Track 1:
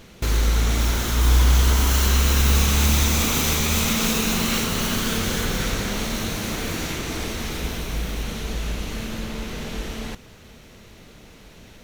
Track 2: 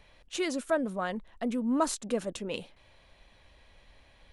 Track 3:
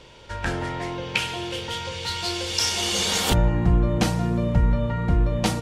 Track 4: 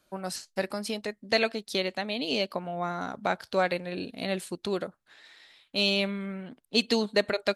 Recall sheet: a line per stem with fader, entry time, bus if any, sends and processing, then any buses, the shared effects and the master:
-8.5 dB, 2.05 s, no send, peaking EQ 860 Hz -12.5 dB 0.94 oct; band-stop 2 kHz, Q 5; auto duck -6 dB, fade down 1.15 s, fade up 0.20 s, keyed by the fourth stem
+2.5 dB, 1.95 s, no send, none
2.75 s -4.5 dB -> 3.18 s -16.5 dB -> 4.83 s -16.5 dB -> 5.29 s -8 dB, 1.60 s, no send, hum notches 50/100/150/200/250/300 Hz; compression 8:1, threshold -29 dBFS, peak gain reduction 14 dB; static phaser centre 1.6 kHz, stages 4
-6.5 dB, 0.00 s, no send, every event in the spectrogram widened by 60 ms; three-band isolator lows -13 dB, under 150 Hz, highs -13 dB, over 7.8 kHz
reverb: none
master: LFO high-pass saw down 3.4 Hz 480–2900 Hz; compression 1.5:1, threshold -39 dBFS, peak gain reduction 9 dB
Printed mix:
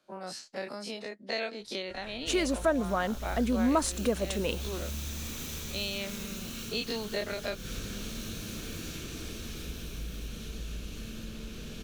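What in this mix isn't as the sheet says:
stem 2 +2.5 dB -> +10.5 dB; stem 3 -4.5 dB -> -15.5 dB; master: missing LFO high-pass saw down 3.4 Hz 480–2900 Hz

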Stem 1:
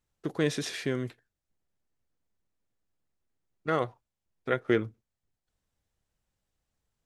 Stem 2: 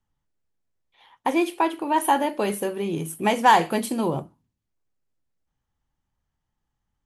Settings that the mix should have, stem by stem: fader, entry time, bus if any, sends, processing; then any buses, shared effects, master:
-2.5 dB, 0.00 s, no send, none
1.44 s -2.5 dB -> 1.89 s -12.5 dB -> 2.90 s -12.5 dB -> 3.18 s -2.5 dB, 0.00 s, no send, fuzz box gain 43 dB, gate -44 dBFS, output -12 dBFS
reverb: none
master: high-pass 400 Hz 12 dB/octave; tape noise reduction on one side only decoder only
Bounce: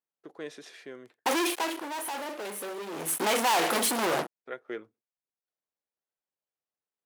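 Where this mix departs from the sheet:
stem 1 -2.5 dB -> -8.5 dB; stem 2 -2.5 dB -> -9.0 dB

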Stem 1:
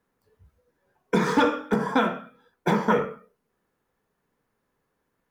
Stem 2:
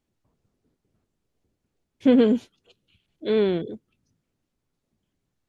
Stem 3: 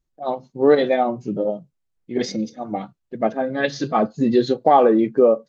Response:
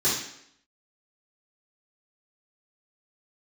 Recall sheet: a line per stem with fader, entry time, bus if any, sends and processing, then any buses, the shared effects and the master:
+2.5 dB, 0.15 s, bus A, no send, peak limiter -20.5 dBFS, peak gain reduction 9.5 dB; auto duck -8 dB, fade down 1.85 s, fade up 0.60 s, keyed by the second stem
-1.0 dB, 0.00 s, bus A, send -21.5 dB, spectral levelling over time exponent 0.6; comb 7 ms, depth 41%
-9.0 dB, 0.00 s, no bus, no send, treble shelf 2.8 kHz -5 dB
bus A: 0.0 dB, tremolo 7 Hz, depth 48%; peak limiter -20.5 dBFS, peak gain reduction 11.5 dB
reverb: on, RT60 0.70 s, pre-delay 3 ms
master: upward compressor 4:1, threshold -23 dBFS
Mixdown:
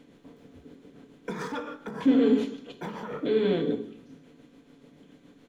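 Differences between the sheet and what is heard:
stem 3: muted; master: missing upward compressor 4:1, threshold -23 dBFS

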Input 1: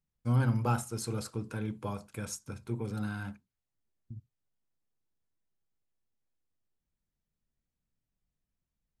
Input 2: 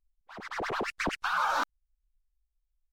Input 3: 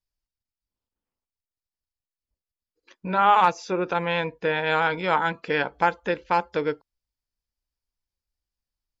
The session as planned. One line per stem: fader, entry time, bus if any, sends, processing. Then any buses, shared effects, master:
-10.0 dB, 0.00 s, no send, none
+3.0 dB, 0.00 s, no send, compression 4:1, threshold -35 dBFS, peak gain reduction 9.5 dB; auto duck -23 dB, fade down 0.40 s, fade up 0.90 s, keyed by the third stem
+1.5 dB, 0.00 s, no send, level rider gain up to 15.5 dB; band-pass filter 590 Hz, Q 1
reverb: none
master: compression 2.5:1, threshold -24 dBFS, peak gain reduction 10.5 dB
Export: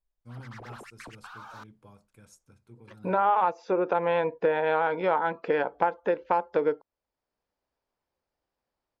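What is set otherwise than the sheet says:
stem 1 -10.0 dB -> -16.5 dB; stem 2 +3.0 dB -> -9.0 dB

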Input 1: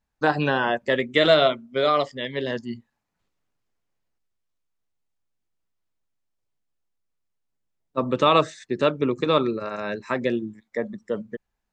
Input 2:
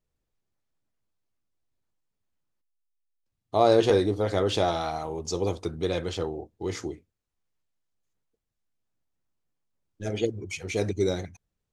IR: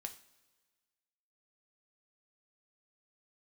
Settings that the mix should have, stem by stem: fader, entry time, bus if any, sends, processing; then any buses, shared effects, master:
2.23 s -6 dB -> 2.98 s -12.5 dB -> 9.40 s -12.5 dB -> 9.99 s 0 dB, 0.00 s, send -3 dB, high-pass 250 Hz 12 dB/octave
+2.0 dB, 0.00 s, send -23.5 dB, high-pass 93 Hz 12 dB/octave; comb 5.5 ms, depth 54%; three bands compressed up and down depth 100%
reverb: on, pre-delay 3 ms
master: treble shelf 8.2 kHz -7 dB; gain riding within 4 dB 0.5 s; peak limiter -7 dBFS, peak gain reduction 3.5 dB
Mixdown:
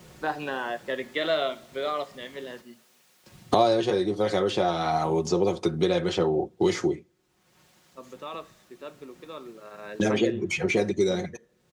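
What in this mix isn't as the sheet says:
stem 1 -6.0 dB -> -18.0 dB; reverb return +6.5 dB

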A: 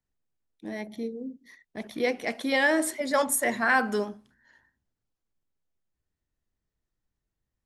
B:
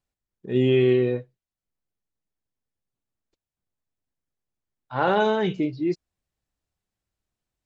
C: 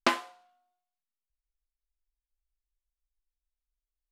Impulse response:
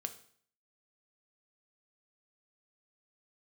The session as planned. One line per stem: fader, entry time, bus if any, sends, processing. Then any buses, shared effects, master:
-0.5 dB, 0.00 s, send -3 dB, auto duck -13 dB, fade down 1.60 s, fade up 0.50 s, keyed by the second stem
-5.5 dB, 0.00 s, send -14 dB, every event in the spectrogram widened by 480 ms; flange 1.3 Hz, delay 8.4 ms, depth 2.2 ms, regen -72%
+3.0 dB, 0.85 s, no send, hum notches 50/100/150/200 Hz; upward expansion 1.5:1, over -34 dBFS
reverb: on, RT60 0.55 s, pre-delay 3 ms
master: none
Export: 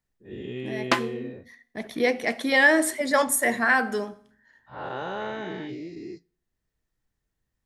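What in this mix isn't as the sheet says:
stem B -5.5 dB -> -14.0 dB; master: extra peaking EQ 1.8 kHz +4.5 dB 0.25 oct

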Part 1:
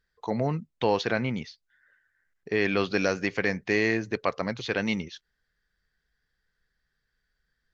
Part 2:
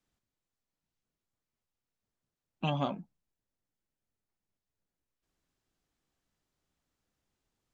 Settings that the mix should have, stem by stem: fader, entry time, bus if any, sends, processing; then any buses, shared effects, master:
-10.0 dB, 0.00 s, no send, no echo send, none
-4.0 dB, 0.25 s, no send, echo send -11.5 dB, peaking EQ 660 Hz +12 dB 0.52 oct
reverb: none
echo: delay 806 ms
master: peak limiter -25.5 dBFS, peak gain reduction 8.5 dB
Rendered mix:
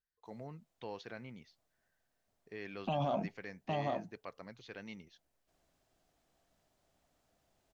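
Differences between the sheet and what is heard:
stem 1 -10.0 dB -> -20.5 dB; stem 2 -4.0 dB -> +5.5 dB

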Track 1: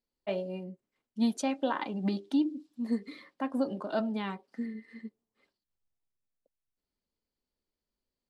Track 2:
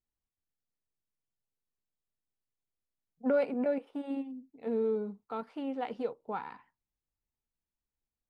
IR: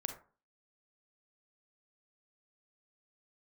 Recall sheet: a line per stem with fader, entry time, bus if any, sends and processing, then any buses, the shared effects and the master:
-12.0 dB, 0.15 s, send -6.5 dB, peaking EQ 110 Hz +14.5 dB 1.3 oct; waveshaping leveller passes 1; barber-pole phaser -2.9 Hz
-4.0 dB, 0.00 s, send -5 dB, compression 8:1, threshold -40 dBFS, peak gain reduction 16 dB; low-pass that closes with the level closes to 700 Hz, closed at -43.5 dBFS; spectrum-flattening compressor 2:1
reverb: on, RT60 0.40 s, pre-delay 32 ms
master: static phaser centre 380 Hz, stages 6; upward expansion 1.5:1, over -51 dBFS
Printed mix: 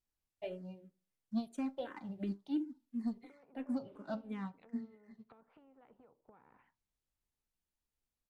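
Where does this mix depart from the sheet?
stem 2: send off; master: missing static phaser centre 380 Hz, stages 6

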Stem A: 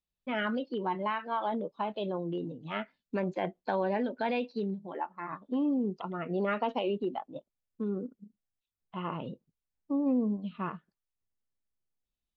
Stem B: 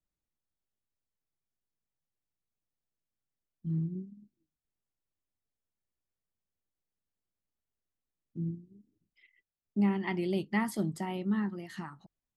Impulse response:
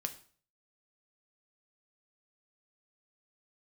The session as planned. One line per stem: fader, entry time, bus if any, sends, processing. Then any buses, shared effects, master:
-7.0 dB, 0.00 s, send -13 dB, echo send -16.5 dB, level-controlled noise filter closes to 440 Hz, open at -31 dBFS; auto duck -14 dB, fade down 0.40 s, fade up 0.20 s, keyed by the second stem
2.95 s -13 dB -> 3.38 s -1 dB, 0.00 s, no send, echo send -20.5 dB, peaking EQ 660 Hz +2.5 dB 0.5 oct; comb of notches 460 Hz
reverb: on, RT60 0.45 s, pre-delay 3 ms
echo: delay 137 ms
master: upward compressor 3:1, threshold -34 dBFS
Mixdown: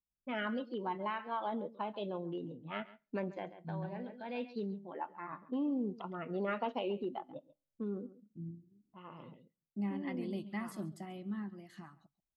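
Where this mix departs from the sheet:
stem B -13.0 dB -> -21.5 dB; master: missing upward compressor 3:1, threshold -34 dBFS

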